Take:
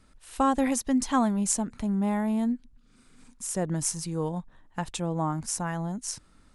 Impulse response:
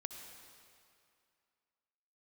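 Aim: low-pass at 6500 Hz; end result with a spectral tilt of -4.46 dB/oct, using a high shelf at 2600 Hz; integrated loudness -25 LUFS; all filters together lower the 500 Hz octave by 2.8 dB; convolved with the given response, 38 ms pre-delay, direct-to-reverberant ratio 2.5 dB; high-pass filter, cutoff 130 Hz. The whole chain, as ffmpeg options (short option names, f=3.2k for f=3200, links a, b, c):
-filter_complex "[0:a]highpass=130,lowpass=6.5k,equalizer=f=500:t=o:g=-3.5,highshelf=f=2.6k:g=3.5,asplit=2[a][b];[1:a]atrim=start_sample=2205,adelay=38[c];[b][c]afir=irnorm=-1:irlink=0,volume=0dB[d];[a][d]amix=inputs=2:normalize=0,volume=3dB"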